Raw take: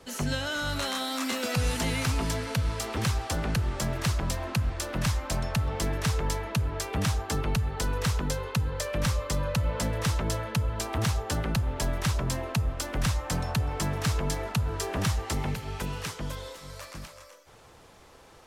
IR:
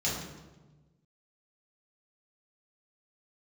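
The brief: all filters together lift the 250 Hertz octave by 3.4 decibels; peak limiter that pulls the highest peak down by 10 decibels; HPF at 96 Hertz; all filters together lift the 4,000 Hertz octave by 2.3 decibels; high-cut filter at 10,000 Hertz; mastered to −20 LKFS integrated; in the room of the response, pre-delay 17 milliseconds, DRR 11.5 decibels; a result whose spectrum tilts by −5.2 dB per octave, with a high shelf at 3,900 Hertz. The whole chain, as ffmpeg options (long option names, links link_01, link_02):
-filter_complex "[0:a]highpass=96,lowpass=10000,equalizer=frequency=250:width_type=o:gain=5,highshelf=frequency=3900:gain=-6,equalizer=frequency=4000:width_type=o:gain=6.5,alimiter=level_in=1dB:limit=-24dB:level=0:latency=1,volume=-1dB,asplit=2[link_01][link_02];[1:a]atrim=start_sample=2205,adelay=17[link_03];[link_02][link_03]afir=irnorm=-1:irlink=0,volume=-19.5dB[link_04];[link_01][link_04]amix=inputs=2:normalize=0,volume=13.5dB"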